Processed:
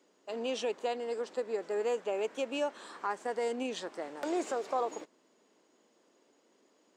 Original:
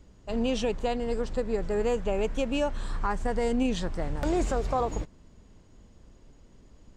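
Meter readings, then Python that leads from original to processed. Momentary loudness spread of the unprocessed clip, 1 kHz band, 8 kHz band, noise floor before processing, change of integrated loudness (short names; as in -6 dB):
5 LU, -4.0 dB, -4.0 dB, -56 dBFS, -5.5 dB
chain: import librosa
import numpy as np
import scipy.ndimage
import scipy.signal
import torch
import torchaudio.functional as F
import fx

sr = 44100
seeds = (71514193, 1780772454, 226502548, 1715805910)

y = scipy.signal.sosfilt(scipy.signal.butter(4, 310.0, 'highpass', fs=sr, output='sos'), x)
y = F.gain(torch.from_numpy(y), -4.0).numpy()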